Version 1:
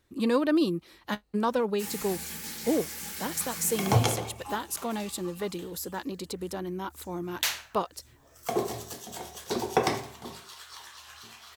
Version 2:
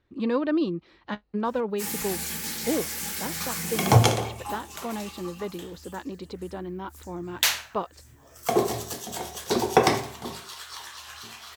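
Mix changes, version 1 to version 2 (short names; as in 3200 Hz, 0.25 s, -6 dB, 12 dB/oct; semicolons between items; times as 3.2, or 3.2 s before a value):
speech: add air absorption 200 m; background +6.0 dB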